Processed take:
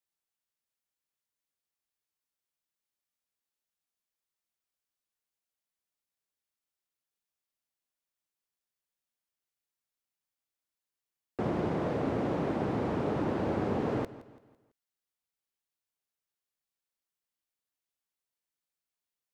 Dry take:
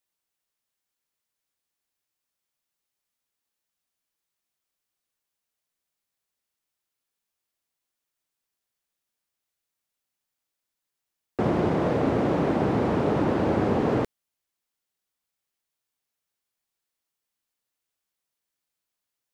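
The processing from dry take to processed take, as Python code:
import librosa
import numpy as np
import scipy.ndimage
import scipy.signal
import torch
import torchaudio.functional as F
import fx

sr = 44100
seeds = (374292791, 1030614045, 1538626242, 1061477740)

y = fx.echo_feedback(x, sr, ms=167, feedback_pct=42, wet_db=-17.0)
y = F.gain(torch.from_numpy(y), -7.5).numpy()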